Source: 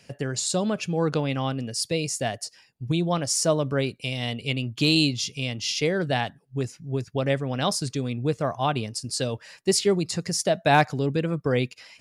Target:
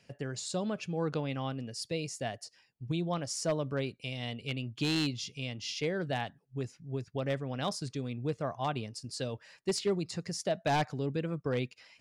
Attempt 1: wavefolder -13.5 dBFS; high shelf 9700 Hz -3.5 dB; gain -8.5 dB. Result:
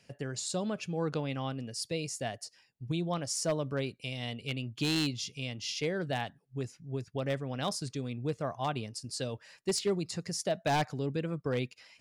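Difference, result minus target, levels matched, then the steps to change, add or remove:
8000 Hz band +3.0 dB
change: high shelf 9700 Hz -13.5 dB

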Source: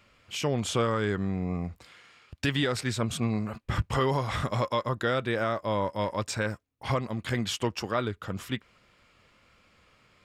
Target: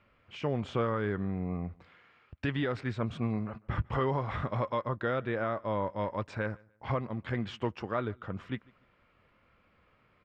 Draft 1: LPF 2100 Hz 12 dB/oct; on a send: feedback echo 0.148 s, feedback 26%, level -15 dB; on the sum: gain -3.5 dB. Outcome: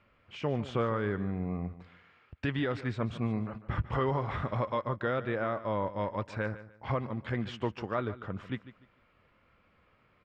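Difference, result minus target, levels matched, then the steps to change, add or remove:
echo-to-direct +11 dB
change: feedback echo 0.148 s, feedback 26%, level -26 dB

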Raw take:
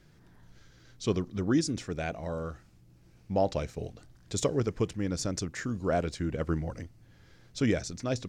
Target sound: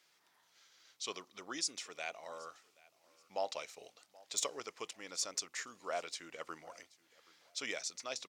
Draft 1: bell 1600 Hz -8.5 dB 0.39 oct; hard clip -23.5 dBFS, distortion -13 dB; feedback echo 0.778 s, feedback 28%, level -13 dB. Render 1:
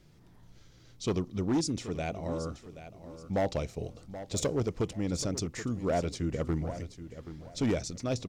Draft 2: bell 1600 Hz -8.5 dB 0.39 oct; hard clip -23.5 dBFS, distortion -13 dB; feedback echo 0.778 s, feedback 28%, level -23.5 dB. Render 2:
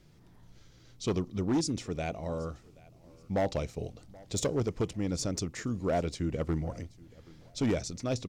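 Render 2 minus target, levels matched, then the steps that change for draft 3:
1000 Hz band -3.0 dB
add first: HPF 1100 Hz 12 dB/oct

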